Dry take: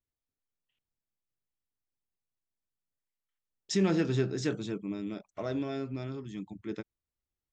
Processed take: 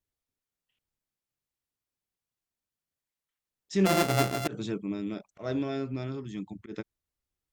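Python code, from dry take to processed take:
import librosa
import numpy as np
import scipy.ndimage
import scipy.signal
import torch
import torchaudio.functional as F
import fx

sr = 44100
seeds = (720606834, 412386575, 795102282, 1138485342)

y = fx.sample_sort(x, sr, block=64, at=(3.85, 4.46), fade=0.02)
y = fx.cheby_harmonics(y, sr, harmonics=(2, 3, 4), levels_db=(-23, -42, -38), full_scale_db=-16.0)
y = fx.auto_swell(y, sr, attack_ms=112.0)
y = y * 10.0 ** (3.0 / 20.0)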